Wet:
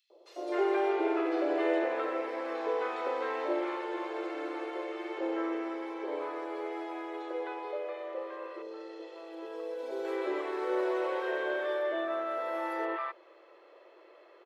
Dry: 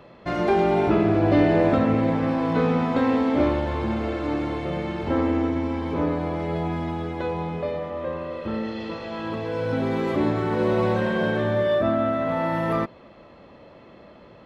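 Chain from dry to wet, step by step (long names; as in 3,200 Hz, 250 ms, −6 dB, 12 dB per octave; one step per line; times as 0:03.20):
Chebyshev high-pass filter 340 Hz, order 6
0:08.36–0:09.79: parametric band 1,800 Hz −10 dB 2.6 octaves
three-band delay without the direct sound highs, lows, mids 100/260 ms, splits 770/3,800 Hz
level −5.5 dB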